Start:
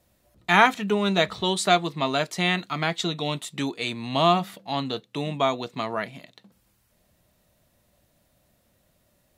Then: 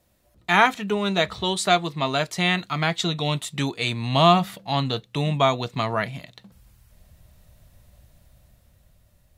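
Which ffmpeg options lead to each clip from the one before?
ffmpeg -i in.wav -af "dynaudnorm=framelen=320:gausssize=9:maxgain=6dB,asubboost=boost=6:cutoff=110" out.wav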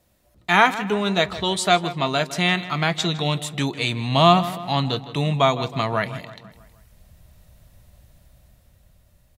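ffmpeg -i in.wav -filter_complex "[0:a]asplit=2[link_01][link_02];[link_02]adelay=159,lowpass=frequency=3800:poles=1,volume=-14.5dB,asplit=2[link_03][link_04];[link_04]adelay=159,lowpass=frequency=3800:poles=1,volume=0.53,asplit=2[link_05][link_06];[link_06]adelay=159,lowpass=frequency=3800:poles=1,volume=0.53,asplit=2[link_07][link_08];[link_08]adelay=159,lowpass=frequency=3800:poles=1,volume=0.53,asplit=2[link_09][link_10];[link_10]adelay=159,lowpass=frequency=3800:poles=1,volume=0.53[link_11];[link_01][link_03][link_05][link_07][link_09][link_11]amix=inputs=6:normalize=0,volume=1.5dB" out.wav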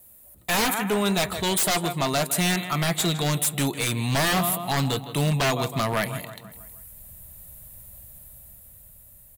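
ffmpeg -i in.wav -af "aexciter=amount=7.4:drive=7.2:freq=8000,aeval=exprs='0.141*(abs(mod(val(0)/0.141+3,4)-2)-1)':channel_layout=same" out.wav

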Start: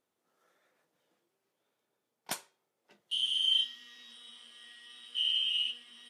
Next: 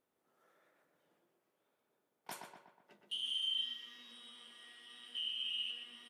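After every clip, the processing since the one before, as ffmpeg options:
ffmpeg -i in.wav -filter_complex "[0:a]equalizer=frequency=5500:width_type=o:width=1.8:gain=-7,alimiter=level_in=8.5dB:limit=-24dB:level=0:latency=1:release=79,volume=-8.5dB,asplit=2[link_01][link_02];[link_02]adelay=122,lowpass=frequency=2600:poles=1,volume=-4dB,asplit=2[link_03][link_04];[link_04]adelay=122,lowpass=frequency=2600:poles=1,volume=0.54,asplit=2[link_05][link_06];[link_06]adelay=122,lowpass=frequency=2600:poles=1,volume=0.54,asplit=2[link_07][link_08];[link_08]adelay=122,lowpass=frequency=2600:poles=1,volume=0.54,asplit=2[link_09][link_10];[link_10]adelay=122,lowpass=frequency=2600:poles=1,volume=0.54,asplit=2[link_11][link_12];[link_12]adelay=122,lowpass=frequency=2600:poles=1,volume=0.54,asplit=2[link_13][link_14];[link_14]adelay=122,lowpass=frequency=2600:poles=1,volume=0.54[link_15];[link_01][link_03][link_05][link_07][link_09][link_11][link_13][link_15]amix=inputs=8:normalize=0" out.wav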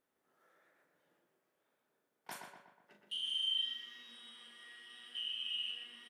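ffmpeg -i in.wav -filter_complex "[0:a]equalizer=frequency=1700:width_type=o:width=0.57:gain=5,asplit=2[link_01][link_02];[link_02]adelay=39,volume=-7dB[link_03];[link_01][link_03]amix=inputs=2:normalize=0,volume=-1.5dB" out.wav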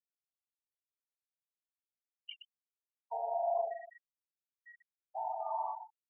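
ffmpeg -i in.wav -af "aeval=exprs='val(0)*gte(abs(val(0)),0.00106)':channel_layout=same,afftfilt=real='re*gte(hypot(re,im),0.0178)':imag='im*gte(hypot(re,im),0.0178)':win_size=1024:overlap=0.75,lowpass=frequency=3200:width_type=q:width=0.5098,lowpass=frequency=3200:width_type=q:width=0.6013,lowpass=frequency=3200:width_type=q:width=0.9,lowpass=frequency=3200:width_type=q:width=2.563,afreqshift=-3800,volume=5dB" out.wav

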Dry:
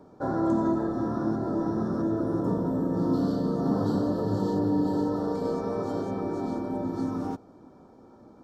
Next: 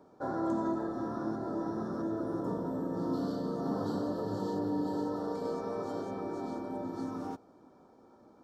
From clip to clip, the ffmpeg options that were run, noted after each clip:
ffmpeg -i in.wav -af "lowshelf=frequency=240:gain=-9,volume=-4dB" out.wav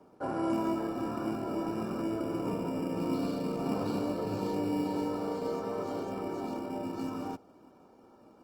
ffmpeg -i in.wav -filter_complex "[0:a]acrossover=split=270|360|1500[link_01][link_02][link_03][link_04];[link_01]acrusher=samples=17:mix=1:aa=0.000001[link_05];[link_05][link_02][link_03][link_04]amix=inputs=4:normalize=0,volume=1.5dB" -ar 48000 -c:a libopus -b:a 32k out.opus

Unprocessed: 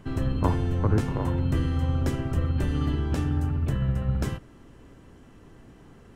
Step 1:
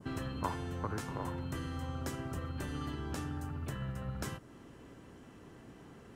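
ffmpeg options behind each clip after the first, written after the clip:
ffmpeg -i in.wav -filter_complex "[0:a]highpass=frequency=130:poles=1,adynamicequalizer=threshold=0.00224:dfrequency=2600:dqfactor=0.81:tfrequency=2600:tqfactor=0.81:attack=5:release=100:ratio=0.375:range=3.5:mode=cutabove:tftype=bell,acrossover=split=920[link_01][link_02];[link_01]acompressor=threshold=-36dB:ratio=6[link_03];[link_03][link_02]amix=inputs=2:normalize=0,volume=-1dB" out.wav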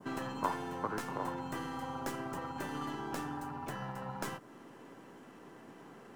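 ffmpeg -i in.wav -filter_complex "[0:a]lowshelf=frequency=390:gain=-5.5,acrossover=split=130|2200[link_01][link_02][link_03];[link_01]aeval=exprs='val(0)*sin(2*PI*890*n/s)':channel_layout=same[link_04];[link_03]aeval=exprs='max(val(0),0)':channel_layout=same[link_05];[link_04][link_02][link_05]amix=inputs=3:normalize=0,volume=4.5dB" out.wav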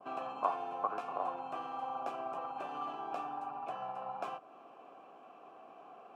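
ffmpeg -i in.wav -filter_complex "[0:a]asplit=3[link_01][link_02][link_03];[link_01]bandpass=frequency=730:width_type=q:width=8,volume=0dB[link_04];[link_02]bandpass=frequency=1090:width_type=q:width=8,volume=-6dB[link_05];[link_03]bandpass=frequency=2440:width_type=q:width=8,volume=-9dB[link_06];[link_04][link_05][link_06]amix=inputs=3:normalize=0,volume=11dB" out.wav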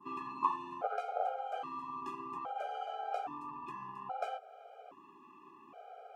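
ffmpeg -i in.wav -af "afftfilt=real='re*gt(sin(2*PI*0.61*pts/sr)*(1-2*mod(floor(b*sr/1024/410),2)),0)':imag='im*gt(sin(2*PI*0.61*pts/sr)*(1-2*mod(floor(b*sr/1024/410),2)),0)':win_size=1024:overlap=0.75,volume=3.5dB" out.wav

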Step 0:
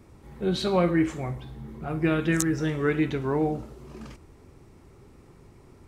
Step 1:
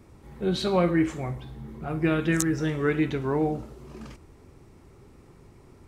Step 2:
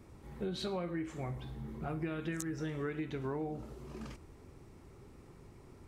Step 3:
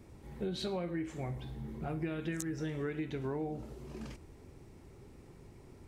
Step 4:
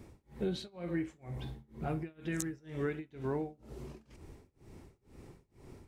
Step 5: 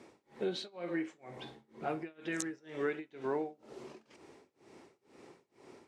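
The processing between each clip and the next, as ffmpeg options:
ffmpeg -i in.wav -af anull out.wav
ffmpeg -i in.wav -af "acompressor=threshold=-31dB:ratio=8,volume=-3.5dB" out.wav
ffmpeg -i in.wav -af "equalizer=frequency=1200:width=2.7:gain=-5.5,volume=1dB" out.wav
ffmpeg -i in.wav -af "tremolo=f=2.1:d=0.97,volume=3dB" out.wav
ffmpeg -i in.wav -af "highpass=360,lowpass=7000,volume=3.5dB" out.wav

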